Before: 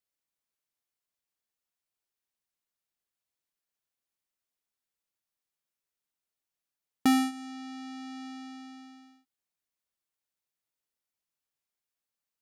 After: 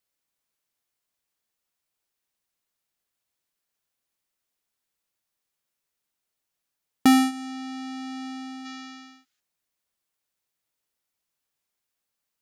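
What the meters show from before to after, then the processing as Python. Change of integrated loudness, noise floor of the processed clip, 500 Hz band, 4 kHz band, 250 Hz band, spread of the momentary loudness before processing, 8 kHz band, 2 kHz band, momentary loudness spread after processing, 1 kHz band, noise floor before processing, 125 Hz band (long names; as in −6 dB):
+6.5 dB, −83 dBFS, +6.5 dB, +6.5 dB, +6.5 dB, 21 LU, +6.5 dB, +6.5 dB, 20 LU, +6.5 dB, below −85 dBFS, +6.5 dB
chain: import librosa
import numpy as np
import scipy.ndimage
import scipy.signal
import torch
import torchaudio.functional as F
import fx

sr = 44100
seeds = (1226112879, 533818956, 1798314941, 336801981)

y = fx.spec_box(x, sr, start_s=8.65, length_s=0.75, low_hz=1200.0, high_hz=7500.0, gain_db=8)
y = y * librosa.db_to_amplitude(6.5)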